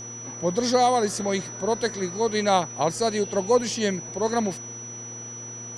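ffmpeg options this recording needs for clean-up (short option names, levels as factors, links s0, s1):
-af "bandreject=f=118:t=h:w=4,bandreject=f=236:t=h:w=4,bandreject=f=354:t=h:w=4,bandreject=f=472:t=h:w=4,bandreject=f=5900:w=30"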